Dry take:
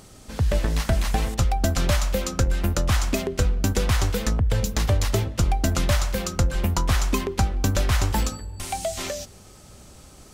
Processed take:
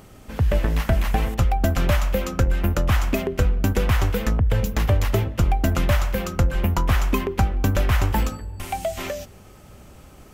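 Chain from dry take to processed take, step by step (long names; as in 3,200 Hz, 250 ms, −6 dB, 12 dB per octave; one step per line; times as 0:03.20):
flat-topped bell 6,100 Hz −9 dB
level +2 dB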